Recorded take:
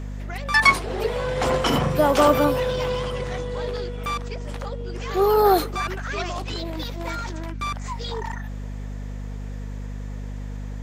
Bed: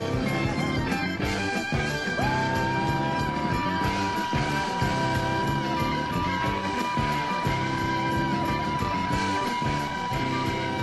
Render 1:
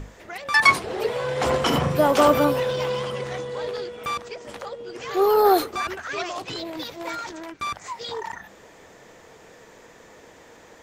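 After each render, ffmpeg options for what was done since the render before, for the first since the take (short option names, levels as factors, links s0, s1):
-af "bandreject=f=50:t=h:w=6,bandreject=f=100:t=h:w=6,bandreject=f=150:t=h:w=6,bandreject=f=200:t=h:w=6,bandreject=f=250:t=h:w=6"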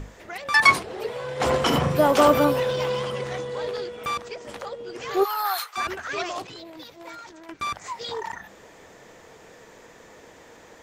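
-filter_complex "[0:a]asplit=3[s0][s1][s2];[s0]afade=t=out:st=5.23:d=0.02[s3];[s1]highpass=f=1000:w=0.5412,highpass=f=1000:w=1.3066,afade=t=in:st=5.23:d=0.02,afade=t=out:st=5.76:d=0.02[s4];[s2]afade=t=in:st=5.76:d=0.02[s5];[s3][s4][s5]amix=inputs=3:normalize=0,asplit=5[s6][s7][s8][s9][s10];[s6]atrim=end=0.832[s11];[s7]atrim=start=0.828:end=1.402,asetpts=PTS-STARTPTS,volume=0.531[s12];[s8]atrim=start=1.398:end=6.472[s13];[s9]atrim=start=6.468:end=7.492,asetpts=PTS-STARTPTS,volume=0.355[s14];[s10]atrim=start=7.488[s15];[s11][s12]acrossfade=d=0.004:c1=hsin:c2=hsin[s16];[s16][s13]acrossfade=d=0.004:c1=hsin:c2=hsin[s17];[s17][s14]acrossfade=d=0.004:c1=hsin:c2=hsin[s18];[s18][s15]acrossfade=d=0.004:c1=hsin:c2=hsin"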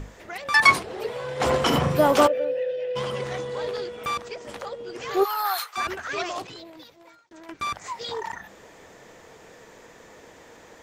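-filter_complex "[0:a]asplit=3[s0][s1][s2];[s0]afade=t=out:st=2.26:d=0.02[s3];[s1]asplit=3[s4][s5][s6];[s4]bandpass=f=530:t=q:w=8,volume=1[s7];[s5]bandpass=f=1840:t=q:w=8,volume=0.501[s8];[s6]bandpass=f=2480:t=q:w=8,volume=0.355[s9];[s7][s8][s9]amix=inputs=3:normalize=0,afade=t=in:st=2.26:d=0.02,afade=t=out:st=2.95:d=0.02[s10];[s2]afade=t=in:st=2.95:d=0.02[s11];[s3][s10][s11]amix=inputs=3:normalize=0,asplit=2[s12][s13];[s12]atrim=end=7.31,asetpts=PTS-STARTPTS,afade=t=out:st=6.51:d=0.8[s14];[s13]atrim=start=7.31,asetpts=PTS-STARTPTS,afade=t=in:d=0.004:c=hsin[s15];[s14][s15]concat=n=2:v=0:a=1"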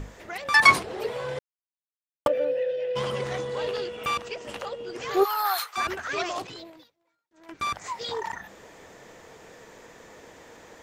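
-filter_complex "[0:a]asettb=1/sr,asplit=3[s0][s1][s2];[s0]atrim=end=3.574[s3];[s1]atrim=start=3.57:end=4.86,asetpts=PTS-STARTPTS,afade=t=in:d=0.004:c=qsin,afade=t=out:st=1.286:d=0.004:c=qsin,equalizer=f=2800:t=o:w=0.2:g=11[s4];[s2]atrim=start=4.856[s5];[s3][s4]acrossfade=d=0.004:c1=hsin:c2=qsin[s6];[s6][s5]acrossfade=d=0.004:c1=qsin:c2=hsin,asplit=5[s7][s8][s9][s10][s11];[s7]atrim=end=1.39,asetpts=PTS-STARTPTS,afade=t=out:st=1.386:d=0.004:c=hsin[s12];[s8]atrim=start=1.39:end=2.26,asetpts=PTS-STARTPTS,volume=0[s13];[s9]atrim=start=2.26:end=6.92,asetpts=PTS-STARTPTS,afade=t=in:d=0.004:c=hsin,afade=t=out:st=4.38:d=0.28:silence=0.0668344[s14];[s10]atrim=start=6.92:end=7.32,asetpts=PTS-STARTPTS,volume=0.0668[s15];[s11]atrim=start=7.32,asetpts=PTS-STARTPTS,afade=t=in:d=0.28:silence=0.0668344[s16];[s12][s13][s14][s15][s16]concat=n=5:v=0:a=1"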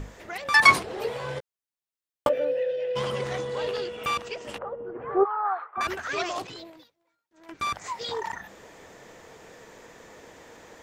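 -filter_complex "[0:a]asettb=1/sr,asplit=3[s0][s1][s2];[s0]atrim=end=0.964[s3];[s1]atrim=start=0.96:end=2.43,asetpts=PTS-STARTPTS,afade=t=in:d=0.004:c=qsin,afade=t=out:st=1.466:d=0.004:c=qsin,asplit=2[s4][s5];[s5]adelay=15,volume=0.447[s6];[s4][s6]amix=inputs=2:normalize=0,atrim=end_sample=64827[s7];[s2]atrim=start=2.426[s8];[s3][s7]acrossfade=d=0.004:c1=hsin:c2=qsin[s9];[s9][s8]acrossfade=d=0.004:c1=qsin:c2=hsin,asettb=1/sr,asplit=3[s10][s11][s12];[s10]atrim=end=4.584[s13];[s11]atrim=start=4.58:end=5.81,asetpts=PTS-STARTPTS,afade=t=in:d=0.004:c=qsin,afade=t=out:st=1.226:d=0.004:c=qsin,lowpass=f=1400:w=0.5412,lowpass=f=1400:w=1.3066[s14];[s12]atrim=start=5.806[s15];[s13][s14]acrossfade=d=0.004:c1=hsin:c2=qsin[s16];[s16][s15]acrossfade=d=0.004:c1=qsin:c2=hsin"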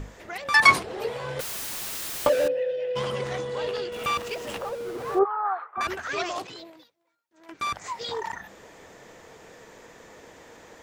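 -filter_complex "[0:a]asettb=1/sr,asplit=3[s0][s1][s2];[s0]atrim=end=1.394[s3];[s1]atrim=start=1.39:end=2.48,asetpts=PTS-STARTPTS,afade=t=in:d=0.004:c=qsin,afade=t=out:st=1.086:d=0.004:c=qsin,aeval=exprs='val(0)+0.5*0.0631*sgn(val(0))':c=same[s4];[s2]atrim=start=2.476[s5];[s3][s4]acrossfade=d=0.004:c1=hsin:c2=qsin[s6];[s6][s5]acrossfade=d=0.004:c1=qsin:c2=hsin,asettb=1/sr,asplit=3[s7][s8][s9];[s7]atrim=end=3.924[s10];[s8]atrim=start=3.92:end=5.19,asetpts=PTS-STARTPTS,afade=t=in:d=0.004:c=qsin,afade=t=out:st=1.266:d=0.004:c=qsin,aeval=exprs='val(0)+0.5*0.0158*sgn(val(0))':c=same[s11];[s9]atrim=start=5.186[s12];[s10][s11]acrossfade=d=0.004:c1=hsin:c2=qsin[s13];[s13][s12]acrossfade=d=0.004:c1=qsin:c2=hsin,asettb=1/sr,asplit=3[s14][s15][s16];[s14]atrim=end=6.384[s17];[s15]atrim=start=6.38:end=7.7,asetpts=PTS-STARTPTS,afade=t=in:d=0.004:c=qsin,afade=t=out:st=1.316:d=0.004:c=qsin,lowshelf=f=94:g=-11.5[s18];[s16]atrim=start=7.696[s19];[s17][s18]acrossfade=d=0.004:c1=hsin:c2=qsin[s20];[s20][s19]acrossfade=d=0.004:c1=qsin:c2=hsin"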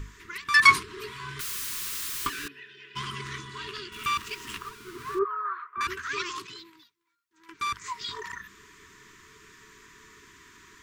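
-af "afftfilt=real='re*(1-between(b*sr/4096,450,940))':imag='im*(1-between(b*sr/4096,450,940))':win_size=4096:overlap=0.75,equalizer=f=270:t=o:w=2.4:g=-6.5"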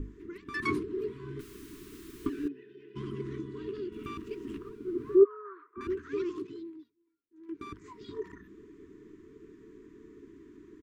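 -af "firequalizer=gain_entry='entry(160,0);entry(300,14);entry(760,-15);entry(4800,-23)':delay=0.05:min_phase=1"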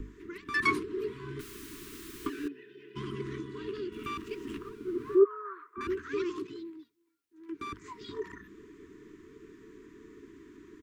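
-filter_complex "[0:a]acrossover=split=320|850[s0][s1][s2];[s0]alimiter=level_in=2.66:limit=0.0631:level=0:latency=1:release=491,volume=0.376[s3];[s2]acontrast=67[s4];[s3][s1][s4]amix=inputs=3:normalize=0"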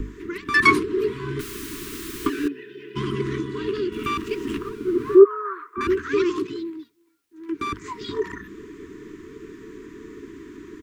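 -af "volume=3.76,alimiter=limit=0.708:level=0:latency=1"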